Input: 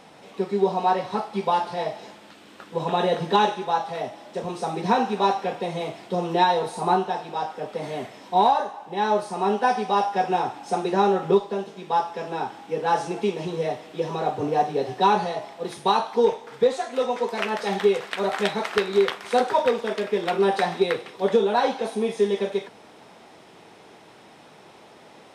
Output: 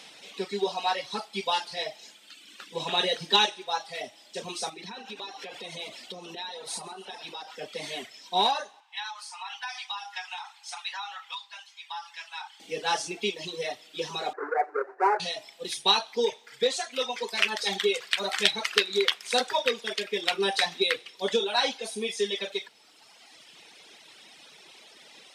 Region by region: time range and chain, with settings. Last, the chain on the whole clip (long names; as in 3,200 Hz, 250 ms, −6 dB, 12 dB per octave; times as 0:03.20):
0:04.69–0:07.56: downward compressor 12 to 1, threshold −30 dBFS + echo with shifted repeats 136 ms, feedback 64%, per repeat +40 Hz, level −11 dB
0:08.80–0:12.60: elliptic high-pass filter 880 Hz, stop band 60 dB + high-shelf EQ 4,700 Hz −7.5 dB + downward compressor 3 to 1, threshold −29 dBFS
0:14.33–0:15.20: each half-wave held at its own peak + elliptic band-pass filter 360–1,500 Hz
whole clip: meter weighting curve D; reverb reduction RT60 1.9 s; high-shelf EQ 4,300 Hz +11.5 dB; level −6.5 dB